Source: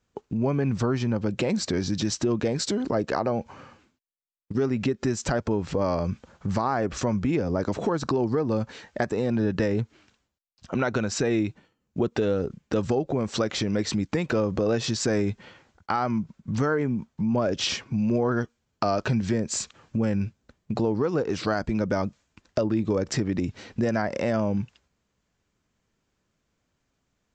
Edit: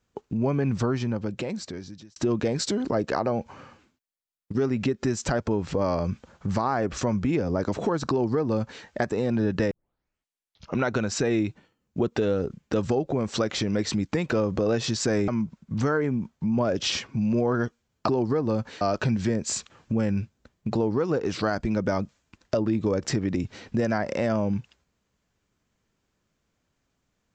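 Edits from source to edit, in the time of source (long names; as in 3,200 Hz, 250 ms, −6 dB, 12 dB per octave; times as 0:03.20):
0:00.81–0:02.16: fade out
0:08.10–0:08.83: duplicate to 0:18.85
0:09.71: tape start 1.09 s
0:15.28–0:16.05: remove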